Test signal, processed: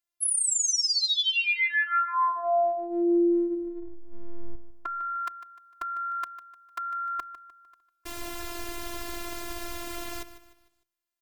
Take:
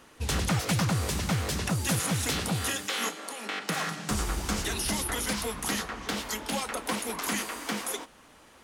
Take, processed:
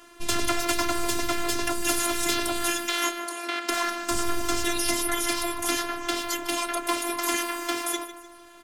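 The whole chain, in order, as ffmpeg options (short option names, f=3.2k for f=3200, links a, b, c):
-af "bandreject=f=60:t=h:w=6,bandreject=f=120:t=h:w=6,bandreject=f=180:t=h:w=6,bandreject=f=240:t=h:w=6,afftfilt=real='hypot(re,im)*cos(PI*b)':imag='0':win_size=512:overlap=0.75,aecho=1:1:151|302|453|604:0.2|0.0798|0.0319|0.0128,volume=7.5dB"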